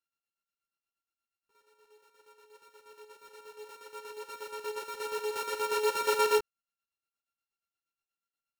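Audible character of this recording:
a buzz of ramps at a fixed pitch in blocks of 32 samples
chopped level 8.4 Hz, depth 60%, duty 50%
a shimmering, thickened sound

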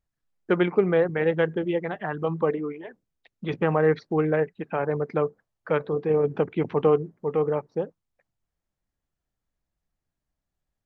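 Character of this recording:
background noise floor −85 dBFS
spectral slope −4.5 dB per octave

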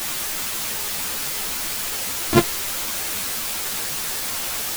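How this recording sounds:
a buzz of ramps at a fixed pitch in blocks of 128 samples
tremolo triangle 11 Hz, depth 100%
a quantiser's noise floor 6 bits, dither triangular
a shimmering, thickened sound

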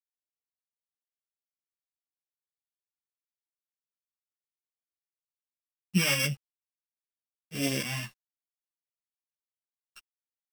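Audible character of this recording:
a buzz of ramps at a fixed pitch in blocks of 16 samples
phaser sweep stages 2, 1.6 Hz, lowest notch 440–1,000 Hz
a quantiser's noise floor 10 bits, dither none
a shimmering, thickened sound

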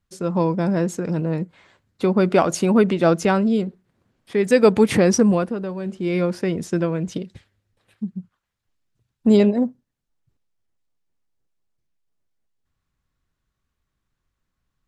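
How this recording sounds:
background noise floor −79 dBFS
spectral slope −5.5 dB per octave

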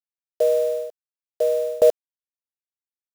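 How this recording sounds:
a quantiser's noise floor 6 bits, dither none
tremolo saw down 1.1 Hz, depth 95%

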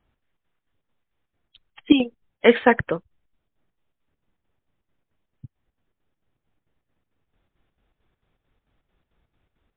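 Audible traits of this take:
chopped level 4.5 Hz, depth 60%, duty 65%
MP3

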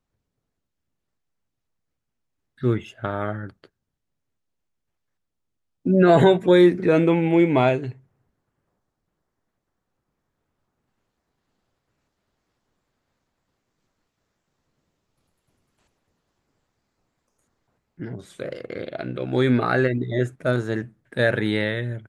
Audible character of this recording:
background noise floor −80 dBFS
spectral slope −6.0 dB per octave

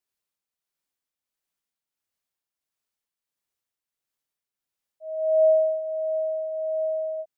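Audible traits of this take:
tremolo triangle 1.5 Hz, depth 50%

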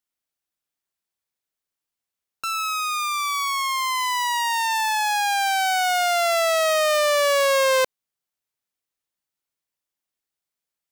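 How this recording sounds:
background noise floor −87 dBFS
spectral slope −6.0 dB per octave

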